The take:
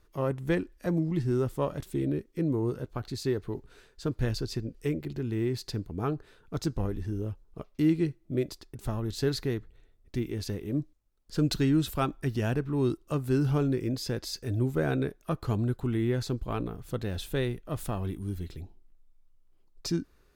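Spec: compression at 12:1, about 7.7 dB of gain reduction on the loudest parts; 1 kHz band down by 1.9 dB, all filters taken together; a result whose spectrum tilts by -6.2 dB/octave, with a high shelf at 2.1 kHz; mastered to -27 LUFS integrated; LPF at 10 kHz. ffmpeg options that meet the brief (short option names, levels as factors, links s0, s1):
-af "lowpass=10000,equalizer=f=1000:t=o:g=-3.5,highshelf=f=2100:g=3.5,acompressor=threshold=0.0398:ratio=12,volume=2.51"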